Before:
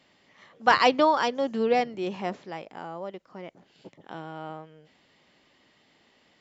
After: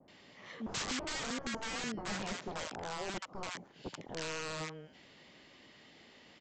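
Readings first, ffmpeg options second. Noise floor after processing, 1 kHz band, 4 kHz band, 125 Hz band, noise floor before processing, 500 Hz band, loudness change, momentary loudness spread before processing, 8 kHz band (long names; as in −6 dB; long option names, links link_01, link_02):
−60 dBFS, −17.5 dB, −6.0 dB, −3.0 dB, −64 dBFS, −16.5 dB, −14.5 dB, 23 LU, can't be measured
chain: -filter_complex "[0:a]acrossover=split=320|3000[link_01][link_02][link_03];[link_01]acompressor=threshold=-41dB:ratio=4[link_04];[link_02]acompressor=threshold=-35dB:ratio=4[link_05];[link_03]acompressor=threshold=-49dB:ratio=4[link_06];[link_04][link_05][link_06]amix=inputs=3:normalize=0,aresample=16000,aeval=exprs='(mod(56.2*val(0)+1,2)-1)/56.2':channel_layout=same,aresample=44100,acrossover=split=960[link_07][link_08];[link_08]adelay=80[link_09];[link_07][link_09]amix=inputs=2:normalize=0,adynamicequalizer=threshold=0.00178:dfrequency=1700:dqfactor=0.7:tfrequency=1700:tqfactor=0.7:attack=5:release=100:ratio=0.375:range=3:mode=cutabove:tftype=highshelf,volume=4.5dB"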